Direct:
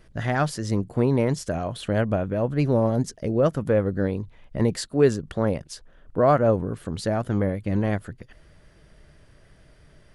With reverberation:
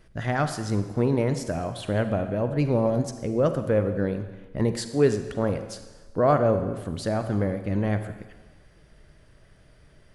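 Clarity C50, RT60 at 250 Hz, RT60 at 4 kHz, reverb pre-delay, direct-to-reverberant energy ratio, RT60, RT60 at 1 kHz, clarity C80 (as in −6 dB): 9.5 dB, 1.2 s, 1.2 s, 35 ms, 8.5 dB, 1.3 s, 1.3 s, 11.0 dB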